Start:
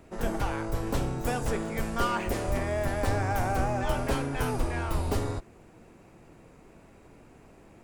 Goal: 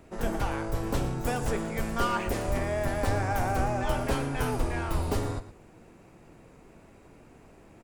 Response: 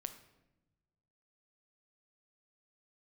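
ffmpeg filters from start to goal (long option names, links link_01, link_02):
-af "aecho=1:1:116:0.188"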